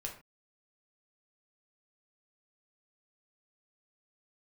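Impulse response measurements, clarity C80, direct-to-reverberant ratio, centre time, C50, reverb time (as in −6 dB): 13.5 dB, −1.0 dB, 20 ms, 8.5 dB, non-exponential decay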